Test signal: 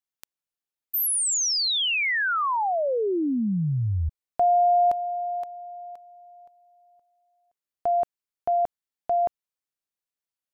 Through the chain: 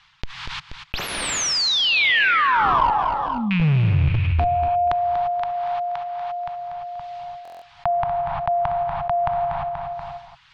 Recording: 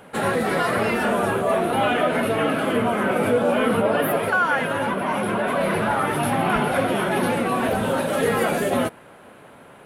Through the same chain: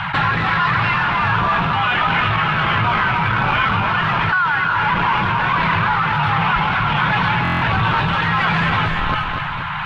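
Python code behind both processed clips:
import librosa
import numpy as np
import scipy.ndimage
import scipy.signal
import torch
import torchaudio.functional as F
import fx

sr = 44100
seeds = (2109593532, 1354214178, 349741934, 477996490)

p1 = fx.rattle_buzz(x, sr, strikes_db=-33.0, level_db=-30.0)
p2 = fx.dereverb_blind(p1, sr, rt60_s=0.59)
p3 = scipy.signal.sosfilt(scipy.signal.cheby1(3, 1.0, [150.0, 940.0], 'bandstop', fs=sr, output='sos'), p2)
p4 = fx.rev_gated(p3, sr, seeds[0], gate_ms=370, shape='rising', drr_db=4.5)
p5 = fx.schmitt(p4, sr, flips_db=-28.0)
p6 = p4 + F.gain(torch.from_numpy(p5), -7.0).numpy()
p7 = p6 * (1.0 - 0.47 / 2.0 + 0.47 / 2.0 * np.cos(2.0 * np.pi * 1.4 * (np.arange(len(p6)) / sr)))
p8 = p7 + fx.echo_feedback(p7, sr, ms=240, feedback_pct=30, wet_db=-15, dry=0)
p9 = fx.rider(p8, sr, range_db=4, speed_s=0.5)
p10 = scipy.signal.sosfilt(scipy.signal.butter(4, 3800.0, 'lowpass', fs=sr, output='sos'), p9)
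p11 = fx.buffer_glitch(p10, sr, at_s=(7.43,), block=1024, repeats=7)
p12 = fx.env_flatten(p11, sr, amount_pct=70)
y = F.gain(torch.from_numpy(p12), 6.0).numpy()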